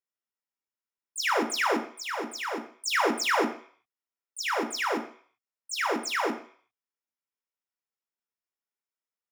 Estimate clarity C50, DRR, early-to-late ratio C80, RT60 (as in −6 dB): 9.0 dB, 2.5 dB, 13.5 dB, 0.50 s